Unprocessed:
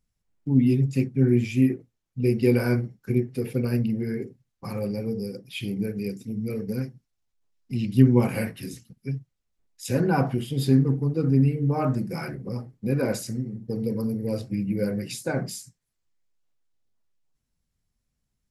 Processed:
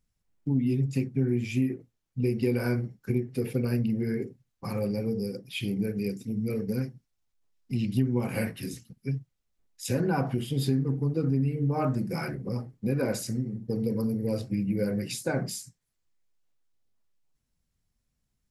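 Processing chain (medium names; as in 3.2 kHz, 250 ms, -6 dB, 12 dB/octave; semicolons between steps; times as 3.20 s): compression 4:1, threshold -23 dBFS, peak gain reduction 11.5 dB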